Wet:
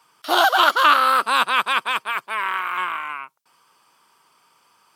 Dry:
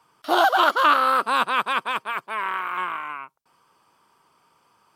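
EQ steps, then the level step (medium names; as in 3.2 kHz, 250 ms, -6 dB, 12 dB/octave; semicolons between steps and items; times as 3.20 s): high-pass 110 Hz; tilt shelf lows -5 dB, about 1.2 kHz; +2.5 dB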